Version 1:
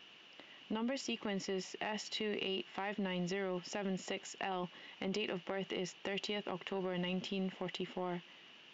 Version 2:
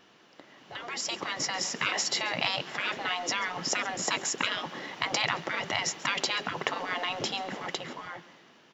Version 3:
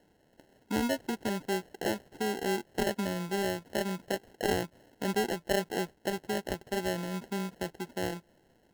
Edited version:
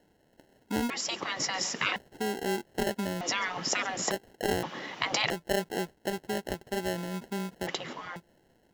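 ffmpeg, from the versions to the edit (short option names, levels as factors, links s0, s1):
-filter_complex "[1:a]asplit=4[s0][s1][s2][s3];[2:a]asplit=5[s4][s5][s6][s7][s8];[s4]atrim=end=0.902[s9];[s0]atrim=start=0.898:end=1.962[s10];[s5]atrim=start=1.958:end=3.212[s11];[s1]atrim=start=3.208:end=4.112[s12];[s6]atrim=start=4.108:end=4.632[s13];[s2]atrim=start=4.628:end=5.302[s14];[s7]atrim=start=5.298:end=7.672[s15];[s3]atrim=start=7.668:end=8.162[s16];[s8]atrim=start=8.158[s17];[s9][s10]acrossfade=d=0.004:c1=hsin:c2=hsin[s18];[s18][s11]acrossfade=d=0.004:c1=hsin:c2=hsin[s19];[s19][s12]acrossfade=d=0.004:c1=hsin:c2=hsin[s20];[s20][s13]acrossfade=d=0.004:c1=hsin:c2=hsin[s21];[s21][s14]acrossfade=d=0.004:c1=hsin:c2=hsin[s22];[s22][s15]acrossfade=d=0.004:c1=hsin:c2=hsin[s23];[s23][s16]acrossfade=d=0.004:c1=hsin:c2=hsin[s24];[s24][s17]acrossfade=d=0.004:c1=hsin:c2=hsin"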